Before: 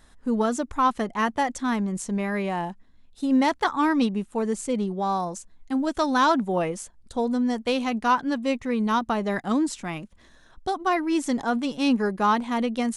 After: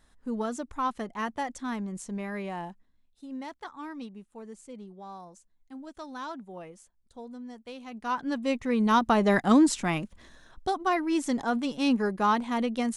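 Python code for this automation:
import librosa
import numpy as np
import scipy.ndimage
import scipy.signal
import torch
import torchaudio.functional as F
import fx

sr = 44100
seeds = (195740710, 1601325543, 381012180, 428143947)

y = fx.gain(x, sr, db=fx.line((2.68, -8.0), (3.25, -18.0), (7.82, -18.0), (8.25, -5.0), (9.29, 4.0), (9.94, 4.0), (10.91, -3.0)))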